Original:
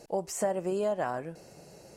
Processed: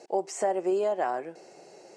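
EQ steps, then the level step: cabinet simulation 320–8300 Hz, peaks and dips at 370 Hz +8 dB, 770 Hz +6 dB, 2.1 kHz +4 dB; 0.0 dB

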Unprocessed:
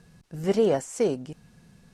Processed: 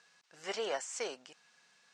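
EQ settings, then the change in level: high-pass 1.1 kHz 12 dB/octave; low-pass 7.4 kHz 24 dB/octave; 0.0 dB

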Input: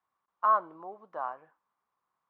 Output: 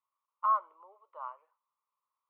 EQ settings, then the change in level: dynamic bell 1.9 kHz, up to +6 dB, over -40 dBFS, Q 1.2; ladder high-pass 570 Hz, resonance 35%; static phaser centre 1.1 kHz, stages 8; 0.0 dB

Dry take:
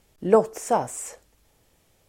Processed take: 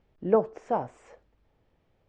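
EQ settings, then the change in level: distance through air 120 m; tape spacing loss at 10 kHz 22 dB; -3.5 dB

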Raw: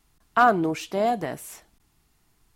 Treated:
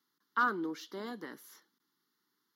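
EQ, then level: high-pass 240 Hz 24 dB/octave; static phaser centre 2.5 kHz, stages 6; -7.5 dB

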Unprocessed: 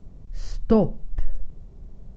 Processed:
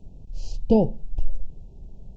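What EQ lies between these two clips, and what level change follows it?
brick-wall FIR band-stop 980–2400 Hz; 0.0 dB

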